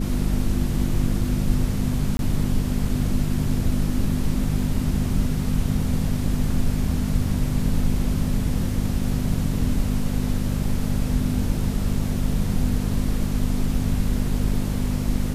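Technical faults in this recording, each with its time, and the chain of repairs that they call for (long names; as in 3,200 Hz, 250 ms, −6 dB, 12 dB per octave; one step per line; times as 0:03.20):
mains hum 50 Hz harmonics 5 −26 dBFS
0:02.17–0:02.19: drop-out 21 ms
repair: hum removal 50 Hz, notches 5
repair the gap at 0:02.17, 21 ms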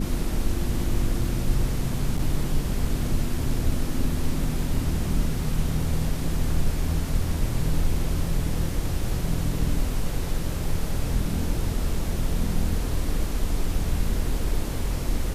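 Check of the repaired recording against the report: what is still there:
none of them is left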